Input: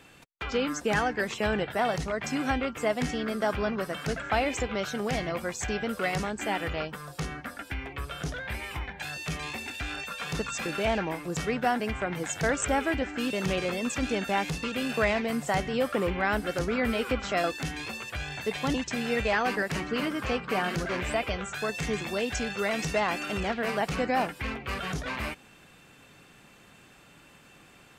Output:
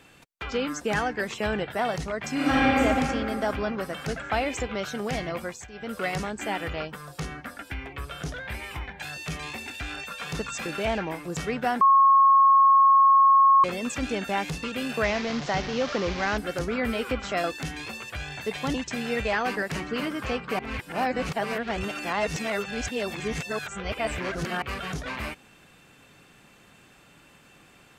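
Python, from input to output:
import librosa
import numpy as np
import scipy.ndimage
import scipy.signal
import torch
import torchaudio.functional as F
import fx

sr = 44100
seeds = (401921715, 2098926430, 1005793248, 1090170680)

y = fx.reverb_throw(x, sr, start_s=2.33, length_s=0.47, rt60_s=2.7, drr_db=-8.0)
y = fx.delta_mod(y, sr, bps=32000, step_db=-27.5, at=(15.04, 16.38))
y = fx.edit(y, sr, fx.fade_down_up(start_s=5.43, length_s=0.54, db=-15.0, fade_s=0.25),
    fx.bleep(start_s=11.81, length_s=1.83, hz=1090.0, db=-13.5),
    fx.reverse_span(start_s=20.59, length_s=4.03), tone=tone)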